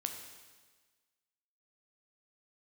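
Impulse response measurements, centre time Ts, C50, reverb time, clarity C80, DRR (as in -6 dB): 33 ms, 6.0 dB, 1.4 s, 7.5 dB, 4.0 dB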